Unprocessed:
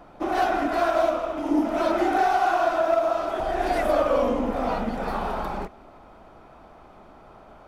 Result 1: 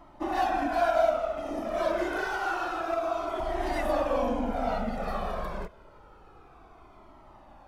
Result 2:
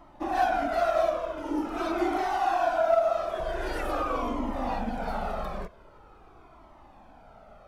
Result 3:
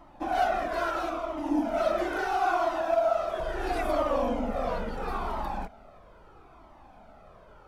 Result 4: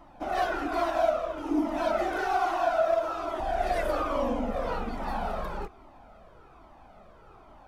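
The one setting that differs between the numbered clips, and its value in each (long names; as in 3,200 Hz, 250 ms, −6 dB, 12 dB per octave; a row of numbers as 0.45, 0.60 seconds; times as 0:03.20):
flanger whose copies keep moving one way, speed: 0.28, 0.45, 0.75, 1.2 Hertz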